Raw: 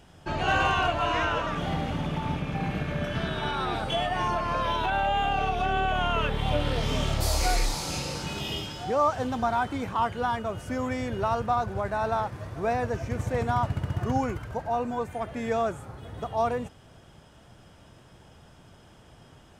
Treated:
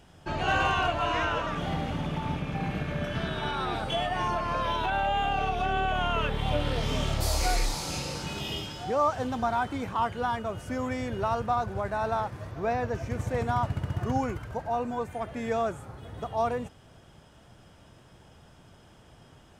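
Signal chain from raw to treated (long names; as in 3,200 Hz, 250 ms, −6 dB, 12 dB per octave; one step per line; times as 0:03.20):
0:12.51–0:12.95: parametric band 9,200 Hz −11 dB 0.56 octaves
level −1.5 dB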